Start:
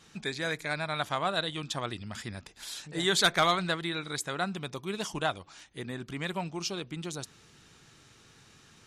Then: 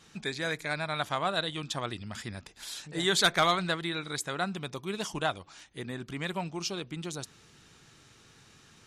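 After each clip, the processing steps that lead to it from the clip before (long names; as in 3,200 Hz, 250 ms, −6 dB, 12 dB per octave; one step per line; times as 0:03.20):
no processing that can be heard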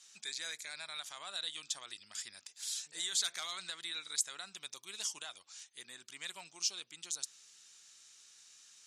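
brickwall limiter −22.5 dBFS, peak gain reduction 9 dB
resonant band-pass 7,200 Hz, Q 1.4
level +5.5 dB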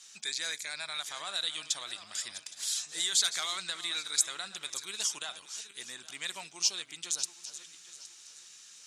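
feedback delay that plays each chunk backwards 408 ms, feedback 51%, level −13 dB
level +6.5 dB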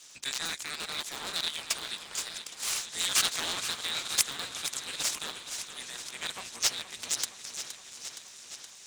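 sub-harmonics by changed cycles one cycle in 3, inverted
feedback echo with a swinging delay time 469 ms, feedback 71%, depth 57 cents, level −11 dB
level +1 dB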